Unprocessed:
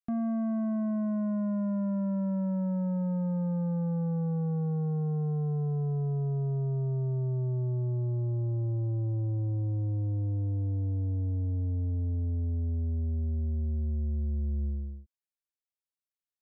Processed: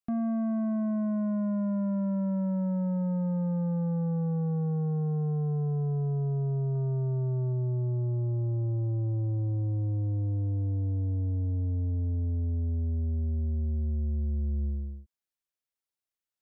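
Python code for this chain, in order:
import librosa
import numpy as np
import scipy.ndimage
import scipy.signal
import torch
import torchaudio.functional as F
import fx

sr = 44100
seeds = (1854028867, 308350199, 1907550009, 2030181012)

y = fx.dynamic_eq(x, sr, hz=1400.0, q=0.88, threshold_db=-59.0, ratio=4.0, max_db=4, at=(6.75, 7.53))
y = F.gain(torch.from_numpy(y), 1.0).numpy()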